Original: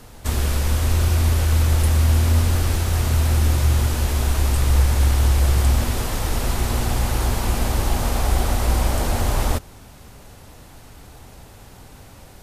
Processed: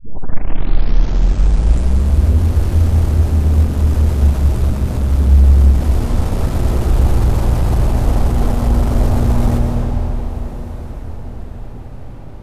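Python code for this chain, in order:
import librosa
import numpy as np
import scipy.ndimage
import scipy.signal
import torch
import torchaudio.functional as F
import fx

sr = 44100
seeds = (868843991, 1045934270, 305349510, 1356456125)

p1 = fx.tape_start_head(x, sr, length_s=2.31)
p2 = fx.tilt_shelf(p1, sr, db=7.0, hz=840.0)
p3 = fx.rider(p2, sr, range_db=5, speed_s=2.0)
p4 = p2 + (p3 * librosa.db_to_amplitude(-3.0))
p5 = fx.env_lowpass(p4, sr, base_hz=2800.0, full_db=-5.5)
p6 = 10.0 ** (-6.5 / 20.0) * np.tanh(p5 / 10.0 ** (-6.5 / 20.0))
p7 = fx.echo_diffused(p6, sr, ms=1287, feedback_pct=41, wet_db=-15.5)
p8 = fx.rev_freeverb(p7, sr, rt60_s=4.2, hf_ratio=0.75, predelay_ms=100, drr_db=1.0)
y = p8 * librosa.db_to_amplitude(-4.0)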